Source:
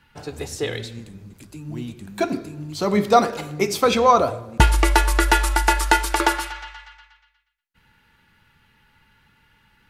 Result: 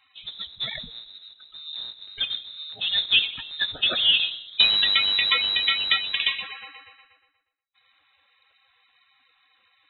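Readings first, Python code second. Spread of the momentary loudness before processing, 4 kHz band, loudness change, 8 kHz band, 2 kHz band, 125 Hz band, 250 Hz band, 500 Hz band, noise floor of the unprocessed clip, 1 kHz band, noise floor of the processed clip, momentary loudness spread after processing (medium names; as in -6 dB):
18 LU, +11.0 dB, -1.0 dB, under -40 dB, -2.0 dB, under -25 dB, -24.0 dB, -23.5 dB, -62 dBFS, -19.5 dB, -67 dBFS, 18 LU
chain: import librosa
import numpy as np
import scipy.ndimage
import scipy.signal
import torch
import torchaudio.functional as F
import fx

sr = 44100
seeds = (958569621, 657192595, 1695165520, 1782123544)

y = fx.spec_quant(x, sr, step_db=30)
y = fx.freq_invert(y, sr, carrier_hz=3900)
y = y * librosa.db_to_amplitude(-4.5)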